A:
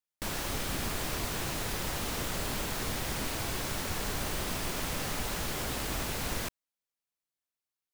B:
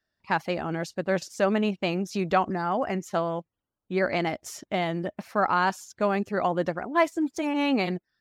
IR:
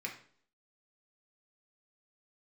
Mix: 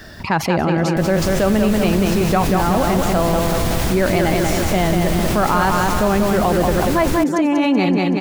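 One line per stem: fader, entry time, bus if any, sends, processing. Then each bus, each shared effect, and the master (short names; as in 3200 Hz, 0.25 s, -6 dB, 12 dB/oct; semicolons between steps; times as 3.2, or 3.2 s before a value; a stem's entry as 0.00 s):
-8.5 dB, 0.75 s, no send, no echo send, AGC gain up to 10 dB
+1.0 dB, 0.00 s, no send, echo send -4.5 dB, dry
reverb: off
echo: feedback echo 0.189 s, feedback 54%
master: low shelf 400 Hz +8 dB; fast leveller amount 70%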